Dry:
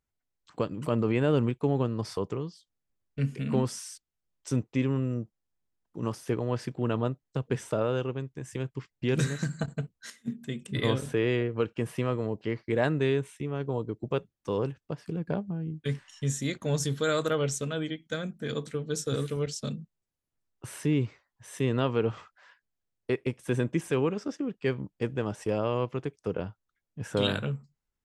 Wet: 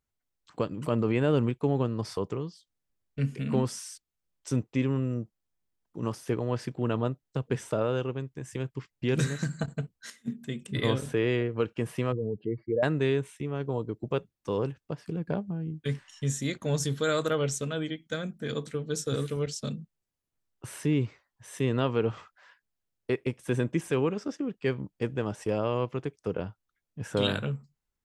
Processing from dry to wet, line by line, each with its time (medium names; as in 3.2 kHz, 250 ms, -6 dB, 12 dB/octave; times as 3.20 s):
12.12–12.83 s: spectral contrast enhancement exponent 2.4